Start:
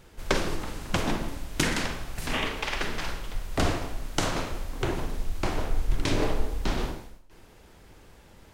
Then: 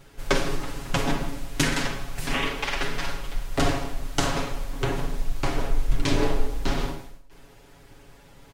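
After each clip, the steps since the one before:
comb filter 7.2 ms, depth 85%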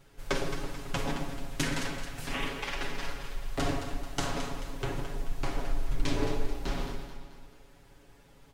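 delay that swaps between a low-pass and a high-pass 109 ms, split 910 Hz, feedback 68%, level −6 dB
level −8 dB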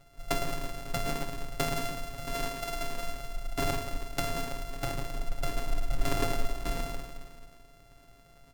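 samples sorted by size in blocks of 64 samples

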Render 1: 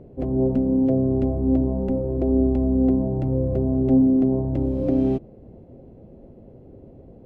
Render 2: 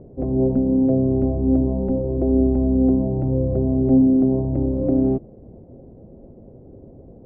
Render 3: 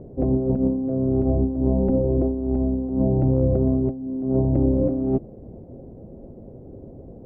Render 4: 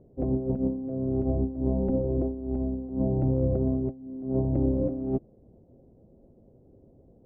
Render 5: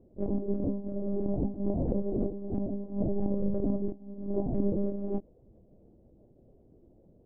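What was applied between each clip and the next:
low-pass filter 1,000 Hz 12 dB per octave; level +2 dB
compressor whose output falls as the input rises −20 dBFS, ratio −0.5
expander for the loud parts 1.5 to 1, over −38 dBFS; level −5 dB
chorus effect 2.7 Hz, delay 19 ms, depth 4.7 ms; one-pitch LPC vocoder at 8 kHz 200 Hz

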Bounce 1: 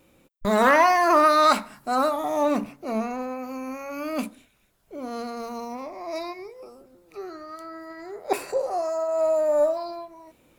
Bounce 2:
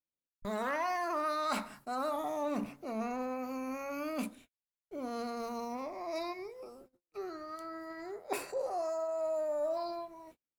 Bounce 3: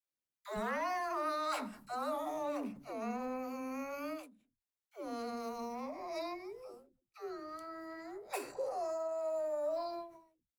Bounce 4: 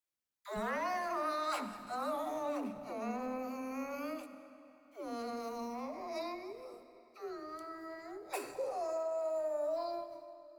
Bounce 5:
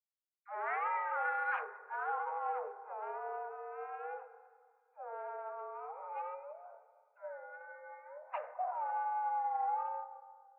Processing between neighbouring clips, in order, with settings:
noise gate −50 dBFS, range −41 dB; reversed playback; downward compressor 5 to 1, threshold −28 dBFS, peak gain reduction 13.5 dB; reversed playback; level −4.5 dB
all-pass dispersion lows, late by 141 ms, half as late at 340 Hz; every ending faded ahead of time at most 120 dB per second; level −2.5 dB
convolution reverb RT60 3.2 s, pre-delay 35 ms, DRR 11 dB
adaptive Wiener filter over 15 samples; single-sideband voice off tune +200 Hz 280–2,100 Hz; multiband upward and downward expander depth 40%; level +1 dB

